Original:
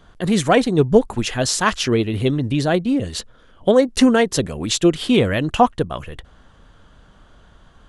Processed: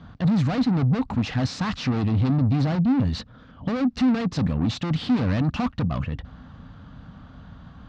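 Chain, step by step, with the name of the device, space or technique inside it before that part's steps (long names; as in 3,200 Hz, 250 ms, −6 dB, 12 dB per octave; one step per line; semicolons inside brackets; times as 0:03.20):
guitar amplifier (tube saturation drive 29 dB, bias 0.2; bass and treble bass +13 dB, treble +11 dB; loudspeaker in its box 79–3,900 Hz, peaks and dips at 170 Hz +3 dB, 260 Hz +8 dB, 370 Hz −9 dB, 790 Hz +4 dB, 1,200 Hz +4 dB, 3,200 Hz −6 dB)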